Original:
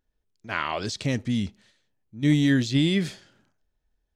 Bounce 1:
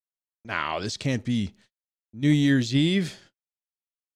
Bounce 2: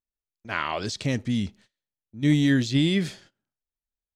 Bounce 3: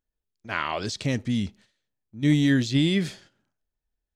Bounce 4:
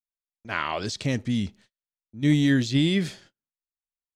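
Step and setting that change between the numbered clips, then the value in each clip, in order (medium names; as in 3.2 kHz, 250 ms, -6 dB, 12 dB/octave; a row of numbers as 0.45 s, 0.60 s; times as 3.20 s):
gate, range: -52 dB, -21 dB, -9 dB, -36 dB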